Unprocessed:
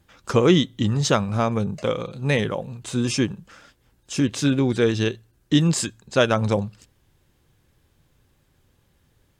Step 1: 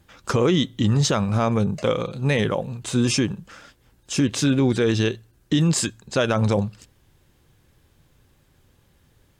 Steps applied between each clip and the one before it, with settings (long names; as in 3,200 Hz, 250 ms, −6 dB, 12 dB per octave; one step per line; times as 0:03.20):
brickwall limiter −14.5 dBFS, peak gain reduction 9.5 dB
level +3.5 dB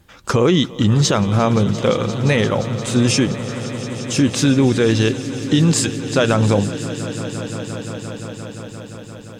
echo that builds up and dies away 174 ms, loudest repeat 5, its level −17.5 dB
level +4.5 dB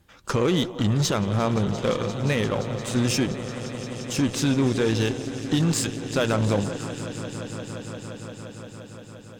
echo through a band-pass that steps 164 ms, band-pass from 480 Hz, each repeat 0.7 octaves, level −9.5 dB
harmonic generator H 8 −23 dB, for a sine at −4 dBFS
level −7.5 dB